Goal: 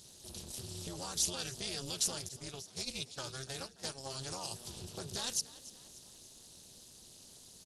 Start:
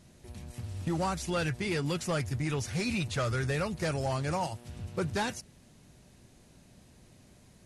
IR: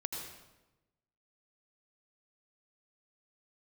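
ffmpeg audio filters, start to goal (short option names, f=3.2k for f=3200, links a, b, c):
-filter_complex "[0:a]asplit=3[a][b][c];[a]afade=t=out:st=2.27:d=0.02[d];[b]agate=range=-22dB:threshold=-29dB:ratio=16:detection=peak,afade=t=in:st=2.27:d=0.02,afade=t=out:st=4.1:d=0.02[e];[c]afade=t=in:st=4.1:d=0.02[f];[d][e][f]amix=inputs=3:normalize=0,bass=f=250:g=-4,treble=f=4k:g=-13,alimiter=level_in=5dB:limit=-24dB:level=0:latency=1:release=54,volume=-5dB,acompressor=threshold=-38dB:ratio=4,aexciter=amount=14.5:drive=6.2:freq=3.4k,tremolo=f=270:d=0.974,asplit=5[g][h][i][j][k];[h]adelay=290,afreqshift=58,volume=-18dB[l];[i]adelay=580,afreqshift=116,volume=-24.2dB[m];[j]adelay=870,afreqshift=174,volume=-30.4dB[n];[k]adelay=1160,afreqshift=232,volume=-36.6dB[o];[g][l][m][n][o]amix=inputs=5:normalize=0"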